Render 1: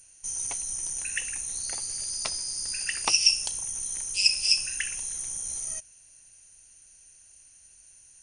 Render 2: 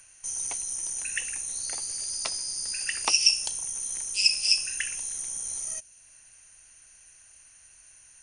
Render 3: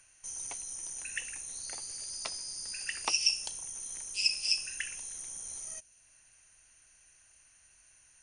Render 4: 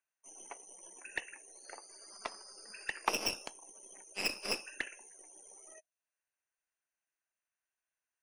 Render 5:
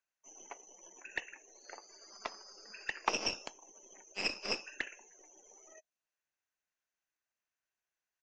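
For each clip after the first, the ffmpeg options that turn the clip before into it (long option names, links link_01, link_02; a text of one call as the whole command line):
ffmpeg -i in.wav -filter_complex "[0:a]acrossover=split=210|880|2400[link_01][link_02][link_03][link_04];[link_01]alimiter=level_in=26.5dB:limit=-24dB:level=0:latency=1:release=300,volume=-26.5dB[link_05];[link_03]acompressor=mode=upward:threshold=-57dB:ratio=2.5[link_06];[link_05][link_02][link_06][link_04]amix=inputs=4:normalize=0" out.wav
ffmpeg -i in.wav -af "highshelf=frequency=8500:gain=-7.5,volume=-5dB" out.wav
ffmpeg -i in.wav -filter_complex "[0:a]aeval=exprs='0.237*(cos(1*acos(clip(val(0)/0.237,-1,1)))-cos(1*PI/2))+0.075*(cos(4*acos(clip(val(0)/0.237,-1,1)))-cos(4*PI/2))+0.0668*(cos(5*acos(clip(val(0)/0.237,-1,1)))-cos(5*PI/2))+0.106*(cos(6*acos(clip(val(0)/0.237,-1,1)))-cos(6*PI/2))+0.0473*(cos(7*acos(clip(val(0)/0.237,-1,1)))-cos(7*PI/2))':channel_layout=same,acrossover=split=290 2200:gain=0.0891 1 0.2[link_01][link_02][link_03];[link_01][link_02][link_03]amix=inputs=3:normalize=0,afftdn=noise_reduction=24:noise_floor=-55,volume=1.5dB" out.wav
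ffmpeg -i in.wav -af "aresample=16000,aresample=44100" out.wav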